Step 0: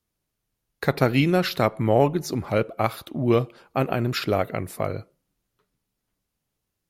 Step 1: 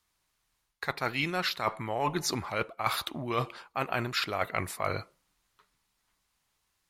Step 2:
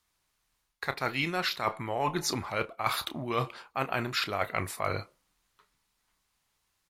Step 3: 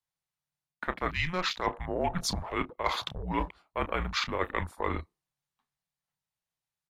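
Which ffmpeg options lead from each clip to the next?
-af "equalizer=f=125:t=o:w=1:g=-5,equalizer=f=250:t=o:w=1:g=-4,equalizer=f=500:t=o:w=1:g=-4,equalizer=f=1000:t=o:w=1:g=9,equalizer=f=2000:t=o:w=1:g=6,equalizer=f=4000:t=o:w=1:g=6,equalizer=f=8000:t=o:w=1:g=6,areverse,acompressor=threshold=0.0501:ratio=16,areverse"
-filter_complex "[0:a]asplit=2[s0][s1];[s1]adelay=30,volume=0.224[s2];[s0][s2]amix=inputs=2:normalize=0"
-af "afreqshift=-180,afwtdn=0.00891"

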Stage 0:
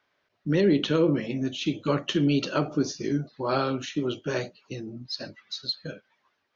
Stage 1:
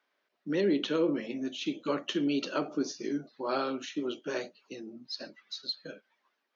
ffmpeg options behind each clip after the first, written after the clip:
-af "highpass=f=210:w=0.5412,highpass=f=210:w=1.3066,volume=0.562"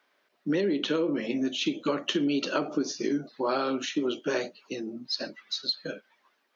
-af "acompressor=threshold=0.0282:ratio=10,volume=2.51"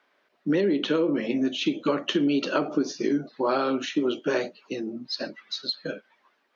-af "lowpass=f=3400:p=1,volume=1.5"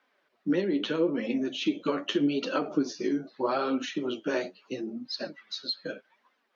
-af "flanger=delay=3.8:depth=7.5:regen=32:speed=0.79:shape=sinusoidal"

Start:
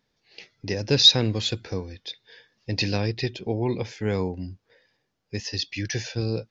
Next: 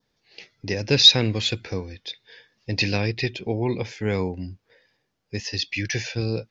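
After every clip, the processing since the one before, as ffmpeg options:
-af "adynamicequalizer=threshold=0.00631:dfrequency=2300:dqfactor=2.1:tfrequency=2300:tqfactor=2.1:attack=5:release=100:ratio=0.375:range=3.5:mode=boostabove:tftype=bell,volume=1.12"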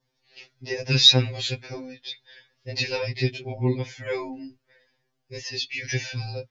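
-af "afftfilt=real='re*2.45*eq(mod(b,6),0)':imag='im*2.45*eq(mod(b,6),0)':win_size=2048:overlap=0.75"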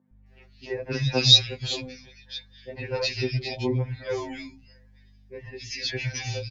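-filter_complex "[0:a]aeval=exprs='val(0)+0.00224*(sin(2*PI*50*n/s)+sin(2*PI*2*50*n/s)/2+sin(2*PI*3*50*n/s)/3+sin(2*PI*4*50*n/s)/4+sin(2*PI*5*50*n/s)/5)':c=same,acrossover=split=180|2000[s0][s1][s2];[s0]adelay=110[s3];[s2]adelay=260[s4];[s3][s1][s4]amix=inputs=3:normalize=0"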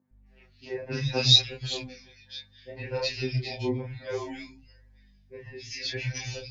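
-af "flanger=delay=22.5:depth=6.2:speed=0.63"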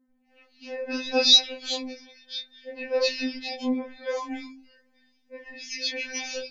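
-af "afftfilt=real='re*3.46*eq(mod(b,12),0)':imag='im*3.46*eq(mod(b,12),0)':win_size=2048:overlap=0.75"

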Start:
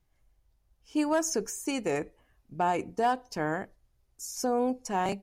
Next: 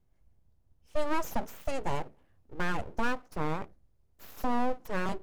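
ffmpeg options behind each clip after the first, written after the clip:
-af "tiltshelf=f=820:g=6,bandreject=f=60:t=h:w=6,bandreject=f=120:t=h:w=6,bandreject=f=180:t=h:w=6,aeval=exprs='abs(val(0))':c=same,volume=0.794"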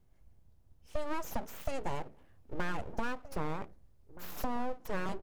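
-filter_complex "[0:a]acompressor=threshold=0.0178:ratio=4,asplit=2[s0][s1];[s1]adelay=1574,volume=0.178,highshelf=f=4000:g=-35.4[s2];[s0][s2]amix=inputs=2:normalize=0,volume=1.58"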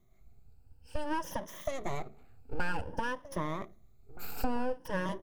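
-af "afftfilt=real='re*pow(10,13/40*sin(2*PI*(1.2*log(max(b,1)*sr/1024/100)/log(2)-(0.54)*(pts-256)/sr)))':imag='im*pow(10,13/40*sin(2*PI*(1.2*log(max(b,1)*sr/1024/100)/log(2)-(0.54)*(pts-256)/sr)))':win_size=1024:overlap=0.75"

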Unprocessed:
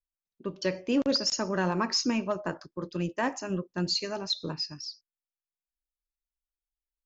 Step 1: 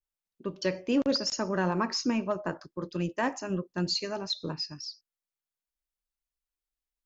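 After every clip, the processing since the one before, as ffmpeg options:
-af "adynamicequalizer=threshold=0.00708:dfrequency=2300:dqfactor=0.7:tfrequency=2300:tqfactor=0.7:attack=5:release=100:ratio=0.375:range=2.5:mode=cutabove:tftype=highshelf"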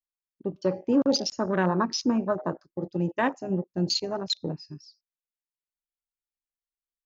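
-af "afwtdn=0.0224,volume=1.58"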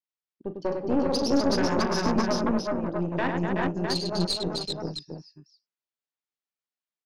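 -af "highpass=130,lowpass=5400,aecho=1:1:41|100|250|376|394|657:0.299|0.531|0.531|0.631|0.668|0.562,aeval=exprs='(tanh(7.94*val(0)+0.75)-tanh(0.75))/7.94':c=same,volume=1.19"

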